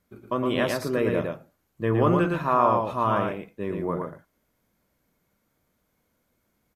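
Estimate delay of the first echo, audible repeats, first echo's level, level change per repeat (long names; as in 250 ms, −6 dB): 113 ms, 1, −4.0 dB, repeats not evenly spaced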